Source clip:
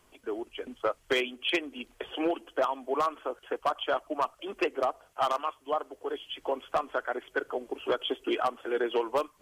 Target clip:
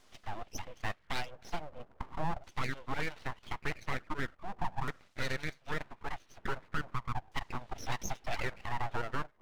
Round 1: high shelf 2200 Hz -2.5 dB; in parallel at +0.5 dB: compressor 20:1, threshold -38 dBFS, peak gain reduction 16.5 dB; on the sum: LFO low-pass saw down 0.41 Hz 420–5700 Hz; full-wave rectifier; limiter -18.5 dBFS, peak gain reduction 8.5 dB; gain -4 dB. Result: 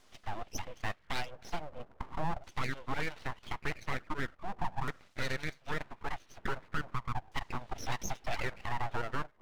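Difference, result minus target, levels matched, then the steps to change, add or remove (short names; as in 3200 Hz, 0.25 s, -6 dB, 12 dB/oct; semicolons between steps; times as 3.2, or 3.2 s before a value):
compressor: peak gain reduction -7 dB
change: compressor 20:1, threshold -45.5 dBFS, peak gain reduction 23.5 dB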